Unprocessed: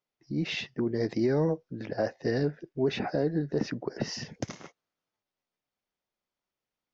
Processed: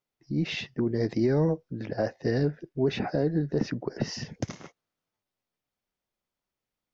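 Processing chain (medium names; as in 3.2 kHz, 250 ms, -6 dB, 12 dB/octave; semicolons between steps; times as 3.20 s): bass shelf 170 Hz +7 dB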